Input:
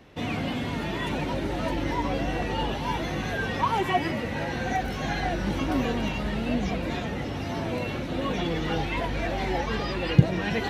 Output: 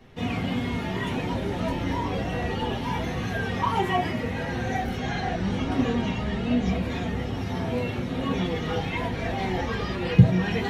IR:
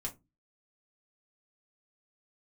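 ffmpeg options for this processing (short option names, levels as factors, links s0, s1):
-filter_complex "[0:a]asettb=1/sr,asplit=3[s0][s1][s2];[s0]atrim=end=4.974[s3];[s1]atrim=start=4.97:end=6.66,asetpts=PTS-STARTPTS,afade=t=in:d=0.004:c=qsin,afade=t=out:st=1.686:d=0.004:c=qsin,lowpass=8300[s4];[s2]atrim=start=6.656[s5];[s3][s4]acrossfade=d=0.004:c1=hsin:c2=qsin[s6];[s6][s5]acrossfade=d=0.004:c1=qsin:c2=hsin[s7];[1:a]atrim=start_sample=2205[s8];[s7][s8]afir=irnorm=-1:irlink=0"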